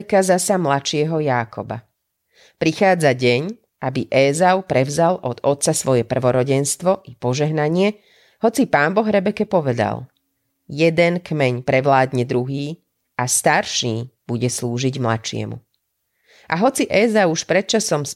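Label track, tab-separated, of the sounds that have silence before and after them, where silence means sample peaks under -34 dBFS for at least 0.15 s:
2.610000	3.530000	sound
3.820000	7.920000	sound
8.430000	10.050000	sound
10.700000	12.740000	sound
13.190000	14.060000	sound
14.290000	15.580000	sound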